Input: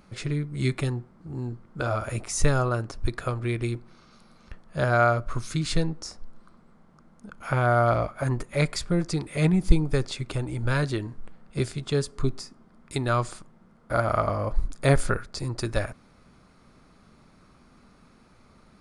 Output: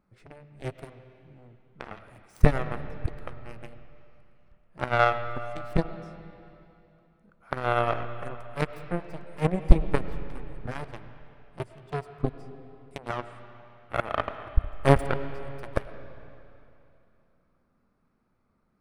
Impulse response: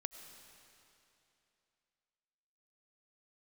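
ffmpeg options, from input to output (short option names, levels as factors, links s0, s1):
-filter_complex "[0:a]aeval=exprs='0.631*(cos(1*acos(clip(val(0)/0.631,-1,1)))-cos(1*PI/2))+0.1*(cos(7*acos(clip(val(0)/0.631,-1,1)))-cos(7*PI/2))':c=same,bandreject=f=6800:w=8.5,asplit=2[s0][s1];[1:a]atrim=start_sample=2205,lowpass=2300[s2];[s1][s2]afir=irnorm=-1:irlink=0,volume=2.24[s3];[s0][s3]amix=inputs=2:normalize=0,volume=0.562"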